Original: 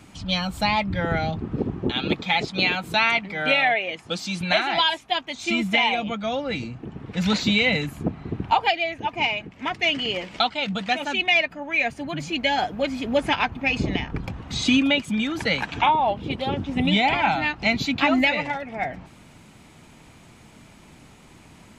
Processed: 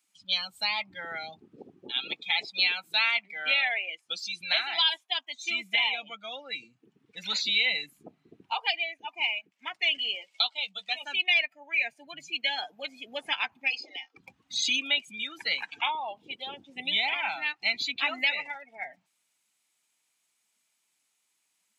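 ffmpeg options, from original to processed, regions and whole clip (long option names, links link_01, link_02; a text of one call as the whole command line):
ffmpeg -i in.wav -filter_complex "[0:a]asettb=1/sr,asplit=3[link_01][link_02][link_03];[link_01]atrim=end=10.154[link_04];[link_02]atrim=start=10.15:end=11.04,asetpts=PTS-STARTPTS,afade=type=in:duration=0.004:curve=qsin,afade=type=out:start_time=0.886:duration=0.004:curve=qsin,highpass=frequency=480:poles=1,equalizer=frequency=1600:width_type=o:width=0.56:gain=-6.5,asplit=2[link_05][link_06];[link_06]adelay=15,volume=-13dB[link_07];[link_05][link_07]amix=inputs=2:normalize=0,atrim=end_sample=39249[link_08];[link_03]atrim=start=11.036[link_09];[link_04][link_08]acrossfade=duration=0.004:curve1=hsin:curve2=qsin[link_10];[link_10][link_09]acrossfade=duration=0.004:curve1=qsin:curve2=hsin,asettb=1/sr,asplit=3[link_11][link_12][link_13];[link_11]atrim=end=13.704[link_14];[link_12]atrim=start=13.7:end=14.17,asetpts=PTS-STARTPTS,afade=type=in:duration=0.004:curve=qsin,afade=type=out:start_time=0.466:duration=0.004:curve=qsin,highpass=frequency=370:width=0.5412,highpass=frequency=370:width=1.3066,equalizer=frequency=480:width_type=q:width=4:gain=-5,equalizer=frequency=960:width_type=q:width=4:gain=-4,equalizer=frequency=1700:width_type=q:width=4:gain=-9,equalizer=frequency=2700:width_type=q:width=4:gain=-4,equalizer=frequency=5000:width_type=q:width=4:gain=7,lowpass=frequency=7000:width=0.5412,lowpass=frequency=7000:width=1.3066,aecho=1:1:3.8:0.37,atrim=end_sample=20727[link_15];[link_13]atrim=start=14.166[link_16];[link_14][link_15]acrossfade=duration=0.004:curve1=hsin:curve2=qsin[link_17];[link_17][link_16]acrossfade=duration=0.004:curve1=qsin:curve2=hsin,highpass=frequency=160:poles=1,afftdn=noise_reduction=21:noise_floor=-31,aderivative,volume=5.5dB" out.wav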